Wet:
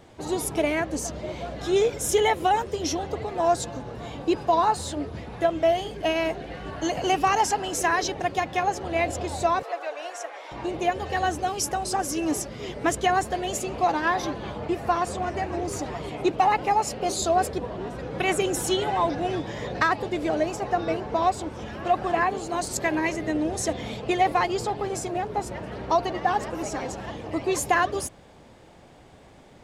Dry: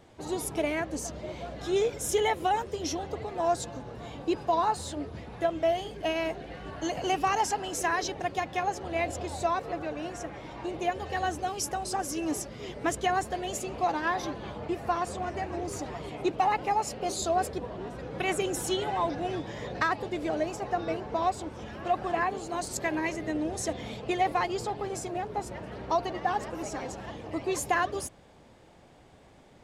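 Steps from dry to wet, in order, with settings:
0:09.63–0:10.51: high-pass filter 530 Hz 24 dB per octave
level +5 dB

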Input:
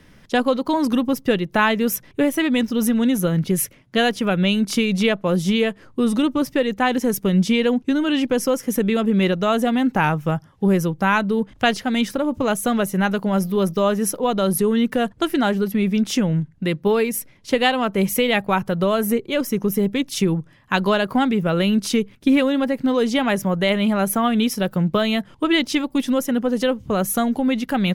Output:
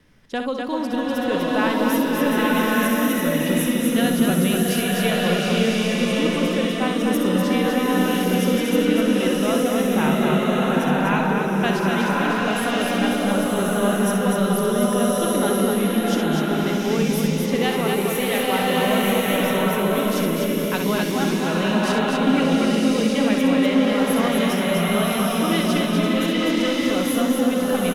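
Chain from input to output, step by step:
tape wow and flutter 16 cents
loudspeakers that aren't time-aligned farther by 22 metres −7 dB, 85 metres −4 dB
slow-attack reverb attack 1,130 ms, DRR −4.5 dB
level −7.5 dB

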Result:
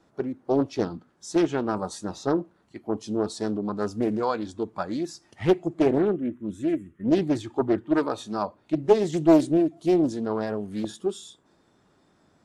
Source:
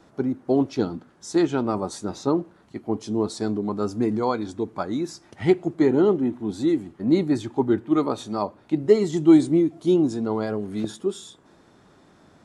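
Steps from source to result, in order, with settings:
0:05.98–0:07.05: phaser with its sweep stopped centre 1,900 Hz, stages 4
noise reduction from a noise print of the clip's start 7 dB
highs frequency-modulated by the lows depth 0.56 ms
level −1.5 dB

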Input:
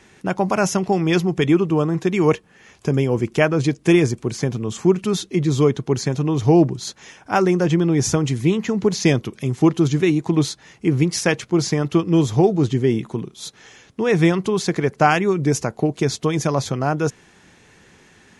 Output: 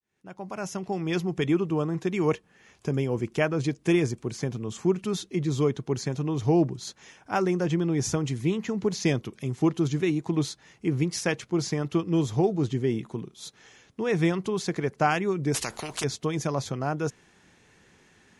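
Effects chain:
fade in at the beginning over 1.37 s
0:15.54–0:16.04: every bin compressed towards the loudest bin 4 to 1
level −8 dB

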